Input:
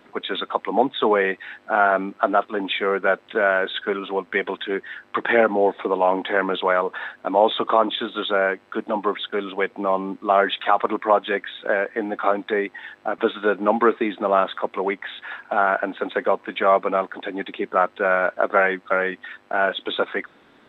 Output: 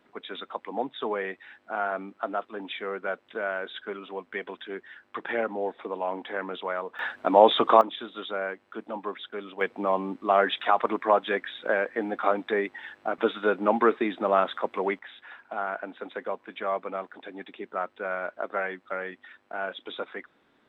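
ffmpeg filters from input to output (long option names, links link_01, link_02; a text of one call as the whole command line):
ffmpeg -i in.wav -af "asetnsamples=nb_out_samples=441:pad=0,asendcmd='6.99 volume volume 0.5dB;7.81 volume volume -11dB;9.61 volume volume -4dB;14.99 volume volume -12dB',volume=-11.5dB" out.wav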